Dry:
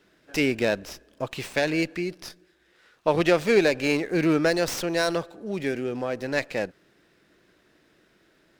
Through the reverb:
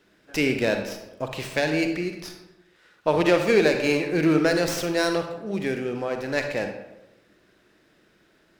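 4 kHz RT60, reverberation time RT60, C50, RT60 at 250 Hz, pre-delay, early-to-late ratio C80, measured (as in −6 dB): 0.55 s, 0.95 s, 6.0 dB, 1.0 s, 39 ms, 9.0 dB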